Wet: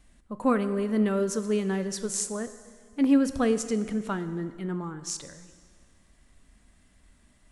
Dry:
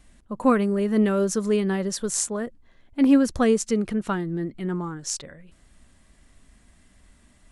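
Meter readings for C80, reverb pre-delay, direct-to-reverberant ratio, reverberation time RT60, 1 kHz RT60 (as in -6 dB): 13.0 dB, 5 ms, 11.0 dB, 1.8 s, 1.8 s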